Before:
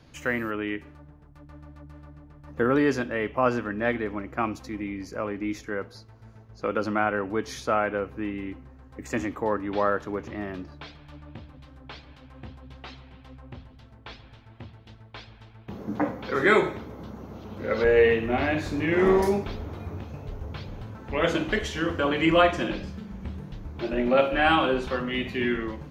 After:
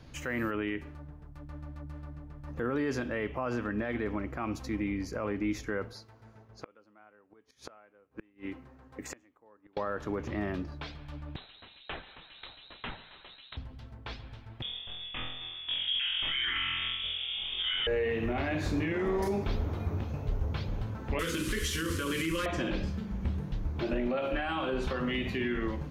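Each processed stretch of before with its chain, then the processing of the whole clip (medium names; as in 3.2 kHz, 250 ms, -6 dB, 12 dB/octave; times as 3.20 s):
5.93–9.77 s: high-pass 330 Hz 6 dB/octave + inverted gate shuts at -27 dBFS, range -32 dB + tape noise reduction on one side only decoder only
11.36–13.57 s: tilt EQ +4 dB/octave + frequency inversion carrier 4 kHz
14.62–17.87 s: frequency inversion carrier 3.5 kHz + bass shelf 96 Hz +11 dB + flutter echo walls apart 4 m, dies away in 0.73 s
21.19–22.46 s: one-bit delta coder 64 kbps, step -35.5 dBFS + Butterworth band-stop 730 Hz, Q 1.2 + treble shelf 4.1 kHz +10 dB
whole clip: compression 2:1, threshold -27 dBFS; peak limiter -23.5 dBFS; bass shelf 83 Hz +8 dB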